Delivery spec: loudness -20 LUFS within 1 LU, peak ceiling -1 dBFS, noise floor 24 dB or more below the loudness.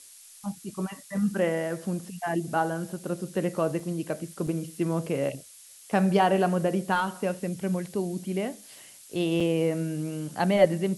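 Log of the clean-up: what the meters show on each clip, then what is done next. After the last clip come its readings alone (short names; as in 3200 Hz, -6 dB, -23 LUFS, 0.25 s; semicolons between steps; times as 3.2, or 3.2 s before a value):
dropouts 3; longest dropout 3.8 ms; noise floor -50 dBFS; noise floor target -52 dBFS; loudness -28.0 LUFS; peak -7.0 dBFS; loudness target -20.0 LUFS
-> interpolate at 3.8/4.47/9.4, 3.8 ms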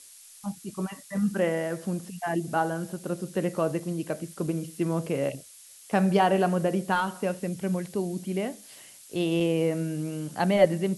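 dropouts 0; noise floor -50 dBFS; noise floor target -52 dBFS
-> denoiser 6 dB, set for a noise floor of -50 dBFS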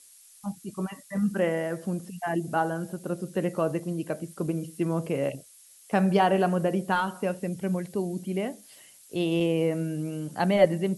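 noise floor -54 dBFS; loudness -28.0 LUFS; peak -7.0 dBFS; loudness target -20.0 LUFS
-> gain +8 dB; limiter -1 dBFS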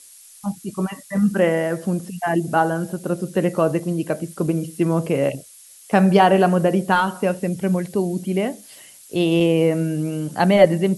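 loudness -20.5 LUFS; peak -1.0 dBFS; noise floor -46 dBFS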